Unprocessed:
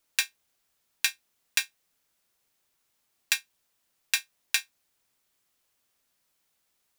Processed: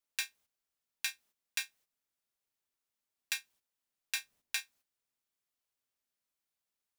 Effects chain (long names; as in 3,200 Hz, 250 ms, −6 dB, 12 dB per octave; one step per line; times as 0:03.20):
noise gate −56 dBFS, range −11 dB
on a send at −21 dB: convolution reverb RT60 0.15 s, pre-delay 3 ms
on the sum: brickwall limiter −8.5 dBFS, peak gain reduction 7.5 dB
0:04.15–0:04.60: low-shelf EQ 440 Hz +9.5 dB
level −4 dB